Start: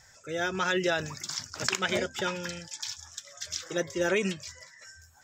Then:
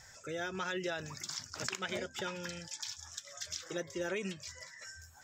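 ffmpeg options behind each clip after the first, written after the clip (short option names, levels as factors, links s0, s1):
-af "acompressor=threshold=0.00631:ratio=2,volume=1.12"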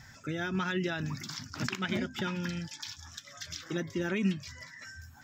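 -af "equalizer=f=125:t=o:w=1:g=5,equalizer=f=250:t=o:w=1:g=12,equalizer=f=500:t=o:w=1:g=-11,equalizer=f=8000:t=o:w=1:g=-12,volume=1.78"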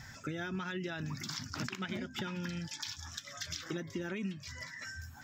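-af "acompressor=threshold=0.0126:ratio=6,volume=1.33"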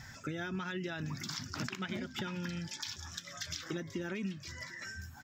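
-af "aecho=1:1:744:0.075"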